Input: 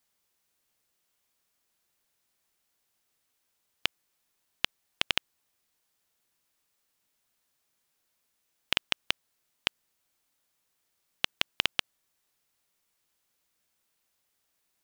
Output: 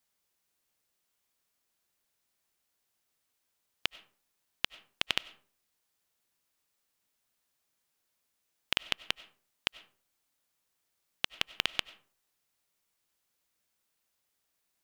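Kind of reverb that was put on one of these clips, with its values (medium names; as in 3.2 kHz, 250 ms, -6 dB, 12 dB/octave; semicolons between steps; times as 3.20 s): algorithmic reverb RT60 0.45 s, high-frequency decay 0.55×, pre-delay 55 ms, DRR 18 dB; trim -3 dB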